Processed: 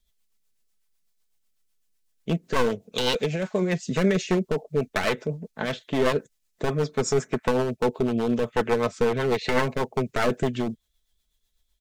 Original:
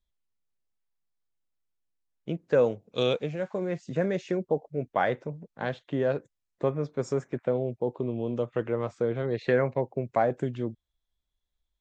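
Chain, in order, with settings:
wavefolder on the positive side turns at −24.5 dBFS
high-shelf EQ 2,800 Hz +10.5 dB
comb filter 4.6 ms, depth 43%
brickwall limiter −17.5 dBFS, peak gain reduction 7.5 dB
rotating-speaker cabinet horn 8 Hz
level +8 dB

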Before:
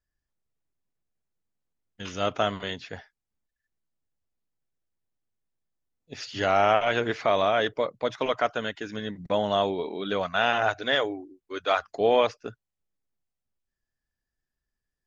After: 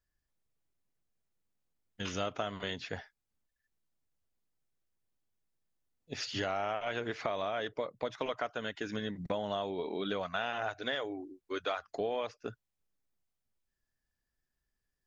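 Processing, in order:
downward compressor 6 to 1, threshold −32 dBFS, peak gain reduction 15 dB

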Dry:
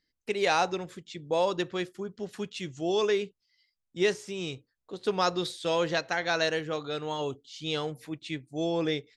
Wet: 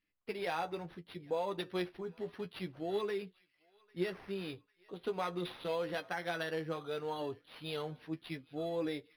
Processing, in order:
0:01.58–0:02.27: high-shelf EQ 4,000 Hz +11.5 dB
downward compressor 3 to 1, threshold −28 dBFS, peak gain reduction 6.5 dB
flanger 0.68 Hz, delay 9.8 ms, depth 2.7 ms, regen +31%
feedback echo with a band-pass in the loop 798 ms, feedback 54%, band-pass 2,200 Hz, level −24 dB
linearly interpolated sample-rate reduction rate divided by 6×
level −1.5 dB

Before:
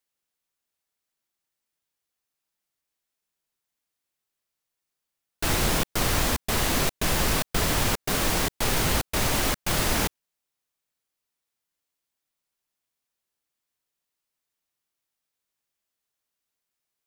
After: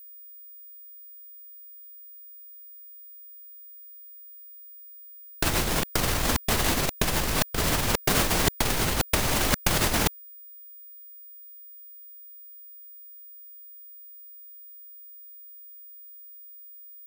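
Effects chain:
compressor whose output falls as the input rises −27 dBFS, ratio −0.5
steady tone 15,000 Hz −48 dBFS
level +4.5 dB

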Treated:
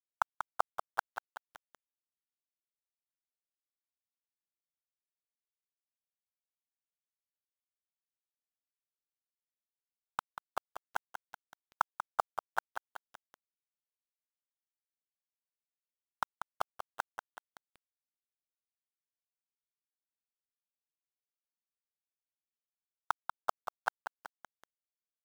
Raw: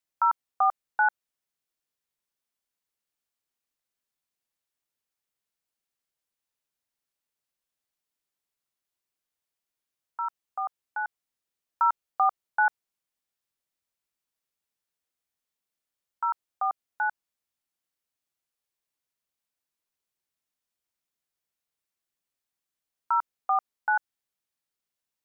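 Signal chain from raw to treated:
gate with flip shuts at −25 dBFS, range −25 dB
centre clipping without the shift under −38 dBFS
feedback echo at a low word length 189 ms, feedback 55%, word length 8 bits, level −8 dB
level +7.5 dB

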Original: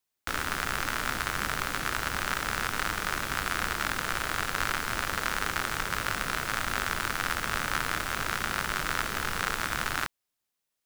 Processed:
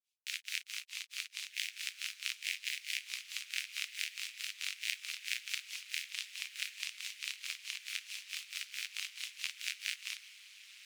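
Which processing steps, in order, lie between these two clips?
granular cloud 205 ms, grains 4.6 per second, pitch spread up and down by 7 semitones
Chebyshev high-pass filter 2,400 Hz, order 4
high-shelf EQ 8,100 Hz −9.5 dB
feedback delay with all-pass diffusion 1,357 ms, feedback 46%, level −13 dB
ring modulation 100 Hz
level +5.5 dB

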